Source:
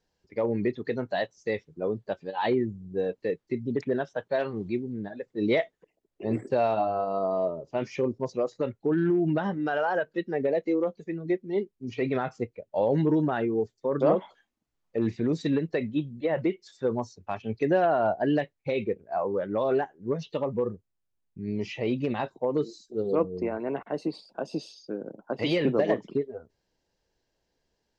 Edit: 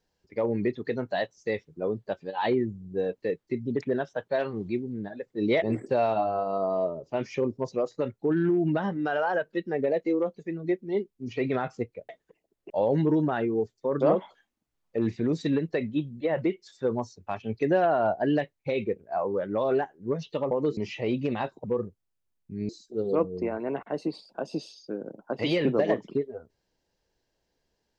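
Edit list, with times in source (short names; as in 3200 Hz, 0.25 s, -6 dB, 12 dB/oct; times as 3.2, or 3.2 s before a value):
5.62–6.23 move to 12.7
20.51–21.56 swap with 22.43–22.69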